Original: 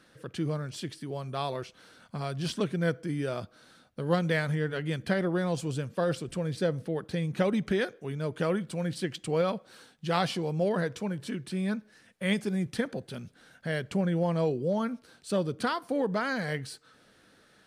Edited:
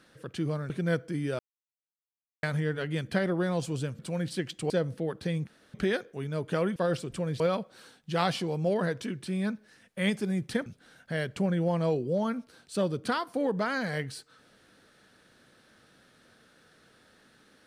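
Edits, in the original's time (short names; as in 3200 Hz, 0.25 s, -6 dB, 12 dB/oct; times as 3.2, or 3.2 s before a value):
0.7–2.65 cut
3.34–4.38 mute
5.94–6.58 swap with 8.64–9.35
7.35–7.62 room tone
10.97–11.26 cut
12.9–13.21 cut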